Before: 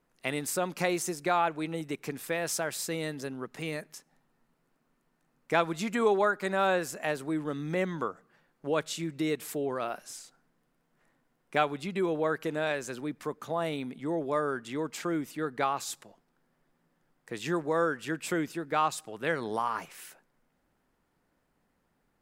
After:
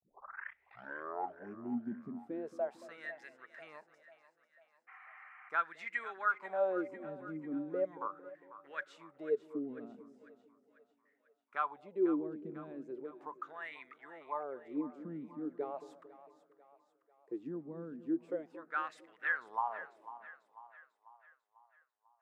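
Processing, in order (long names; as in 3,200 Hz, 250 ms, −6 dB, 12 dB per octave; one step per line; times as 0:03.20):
turntable start at the beginning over 2.27 s
noise gate with hold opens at −56 dBFS
LFO wah 0.38 Hz 210–2,000 Hz, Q 8.2
echo with a time of its own for lows and highs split 590 Hz, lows 226 ms, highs 495 ms, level −14 dB
healed spectral selection 0:04.91–0:05.46, 700–3,200 Hz after
level +3.5 dB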